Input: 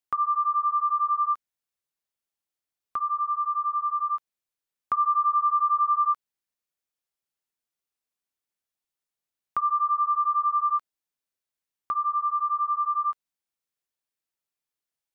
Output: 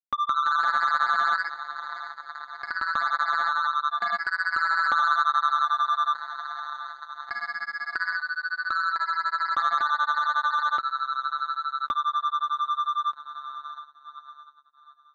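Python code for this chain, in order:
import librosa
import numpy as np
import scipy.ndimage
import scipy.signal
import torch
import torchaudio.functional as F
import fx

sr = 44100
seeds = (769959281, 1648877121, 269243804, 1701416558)

y = x + 0.59 * np.pad(x, (int(3.6 * sr / 1000.0), 0))[:len(x)]
y = fx.echo_pitch(y, sr, ms=181, semitones=2, count=3, db_per_echo=-3.0)
y = fx.leveller(y, sr, passes=1)
y = scipy.signal.sosfilt(scipy.signal.butter(2, 110.0, 'highpass', fs=sr, output='sos'), y)
y = fx.echo_diffused(y, sr, ms=626, feedback_pct=67, wet_db=-15)
y = fx.power_curve(y, sr, exponent=3.0)
y = fx.lowpass(y, sr, hz=1300.0, slope=6)
y = fx.env_flatten(y, sr, amount_pct=70)
y = y * 10.0 ** (3.5 / 20.0)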